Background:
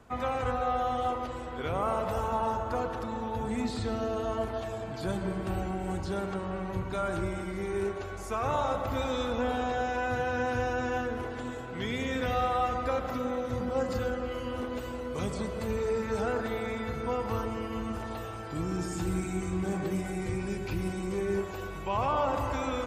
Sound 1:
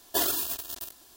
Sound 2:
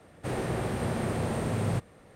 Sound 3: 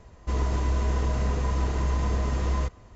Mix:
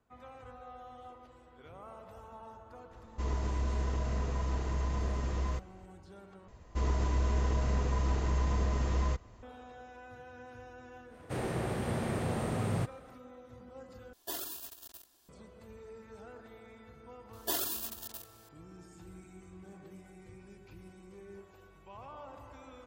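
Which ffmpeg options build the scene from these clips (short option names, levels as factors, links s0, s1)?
-filter_complex "[3:a]asplit=2[s0][s1];[1:a]asplit=2[s2][s3];[0:a]volume=0.1,asplit=3[s4][s5][s6];[s4]atrim=end=6.484[s7];[s1]atrim=end=2.95,asetpts=PTS-STARTPTS,volume=0.596[s8];[s5]atrim=start=9.426:end=14.134[s9];[s2]atrim=end=1.16,asetpts=PTS-STARTPTS,volume=0.224[s10];[s6]atrim=start=15.286[s11];[s0]atrim=end=2.95,asetpts=PTS-STARTPTS,volume=0.422,afade=t=in:d=0.004:c=hsin,afade=t=out:st=2.946:d=0.004:c=hsin,adelay=2910[s12];[2:a]atrim=end=2.15,asetpts=PTS-STARTPTS,volume=0.668,afade=t=in:d=0.1,afade=t=out:st=2.05:d=0.1,adelay=487746S[s13];[s3]atrim=end=1.16,asetpts=PTS-STARTPTS,volume=0.447,afade=t=in:d=0.004:c=hsin,afade=t=out:st=1.156:d=0.004:c=hsin,adelay=17330[s14];[s7][s8]acrossfade=d=0.004:c1=hsin:c2=hsin[s15];[s15][s9]acrossfade=d=0.004:c1=hsin:c2=hsin[s16];[s16][s10]acrossfade=d=0.004:c1=hsin:c2=hsin[s17];[s17][s11]acrossfade=d=0.004:c1=hsin:c2=hsin[s18];[s18][s12][s13][s14]amix=inputs=4:normalize=0"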